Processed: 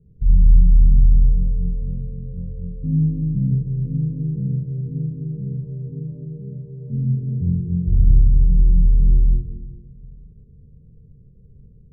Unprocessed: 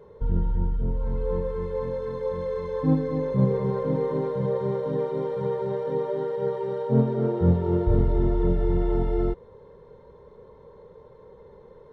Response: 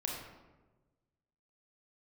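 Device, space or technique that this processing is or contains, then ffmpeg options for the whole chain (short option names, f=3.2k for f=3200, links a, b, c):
club heard from the street: -filter_complex "[0:a]alimiter=limit=-19dB:level=0:latency=1:release=44,lowpass=f=190:w=0.5412,lowpass=f=190:w=1.3066[a];[1:a]atrim=start_sample=2205[b];[a][b]afir=irnorm=-1:irlink=0,asplit=3[c][d][e];[c]afade=t=out:st=3.68:d=0.02[f];[d]equalizer=f=2.2k:w=0.49:g=-9.5,afade=t=in:st=3.68:d=0.02,afade=t=out:st=4.08:d=0.02[g];[e]afade=t=in:st=4.08:d=0.02[h];[f][g][h]amix=inputs=3:normalize=0,volume=7.5dB"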